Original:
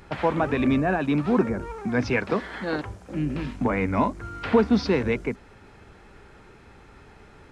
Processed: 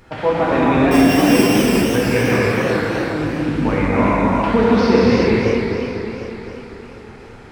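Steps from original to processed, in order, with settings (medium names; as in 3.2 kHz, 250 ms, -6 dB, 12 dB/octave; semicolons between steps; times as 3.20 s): 0.91–1.95 s: sorted samples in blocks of 16 samples; gated-style reverb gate 460 ms flat, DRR -7 dB; modulated delay 252 ms, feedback 66%, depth 174 cents, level -7 dB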